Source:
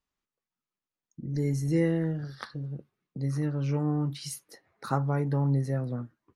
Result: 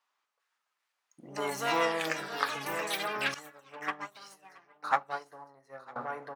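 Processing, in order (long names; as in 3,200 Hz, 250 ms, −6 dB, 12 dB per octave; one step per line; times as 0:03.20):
running median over 3 samples
high-shelf EQ 8,700 Hz −7 dB
soft clipping −23.5 dBFS, distortion −14 dB
high-pass filter 750 Hz 12 dB per octave
parametric band 990 Hz +7 dB 1.6 octaves
single-tap delay 955 ms −9 dB
rectangular room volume 360 cubic metres, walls mixed, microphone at 0.32 metres
delay with pitch and tempo change per echo 398 ms, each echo +6 semitones, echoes 3
0:03.34–0:05.96: expander for the loud parts 2.5 to 1, over −45 dBFS
level +7.5 dB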